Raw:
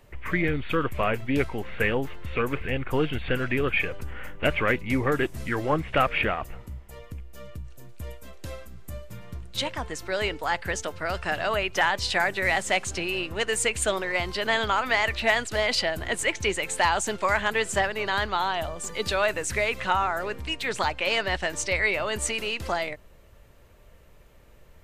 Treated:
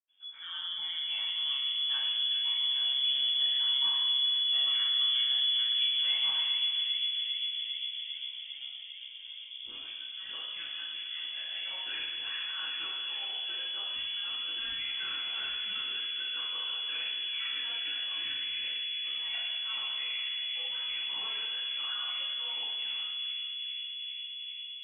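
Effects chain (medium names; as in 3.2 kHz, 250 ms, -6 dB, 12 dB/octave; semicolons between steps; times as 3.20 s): treble shelf 2.5 kHz -8.5 dB; bucket-brigade echo 400 ms, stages 4096, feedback 84%, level -5 dB; reverberation RT60 1.6 s, pre-delay 77 ms; frequency inversion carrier 3.4 kHz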